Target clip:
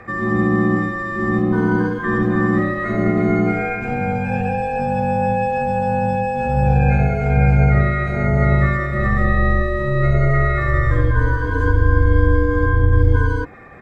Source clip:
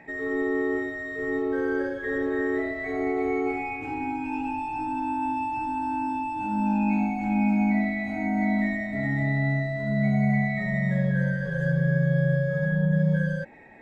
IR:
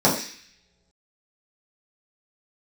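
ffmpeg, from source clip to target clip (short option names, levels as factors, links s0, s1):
-filter_complex "[0:a]asplit=2[s0][s1];[s1]asetrate=29433,aresample=44100,atempo=1.49831,volume=0.891[s2];[s0][s2]amix=inputs=2:normalize=0,afreqshift=-71,volume=2.24"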